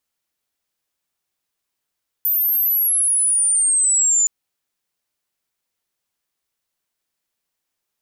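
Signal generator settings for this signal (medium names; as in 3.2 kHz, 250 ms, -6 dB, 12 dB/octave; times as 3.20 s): sweep logarithmic 14 kHz -> 7 kHz -15.5 dBFS -> -13 dBFS 2.02 s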